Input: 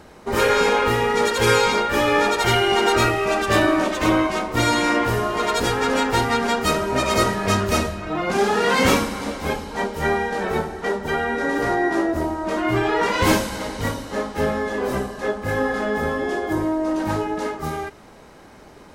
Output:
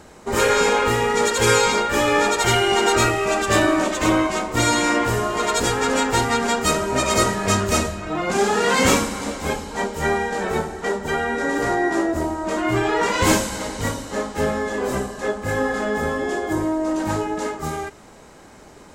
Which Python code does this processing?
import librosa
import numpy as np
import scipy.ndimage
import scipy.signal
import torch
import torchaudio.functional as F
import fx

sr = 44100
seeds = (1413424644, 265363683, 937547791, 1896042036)

y = fx.peak_eq(x, sr, hz=7400.0, db=9.5, octaves=0.47)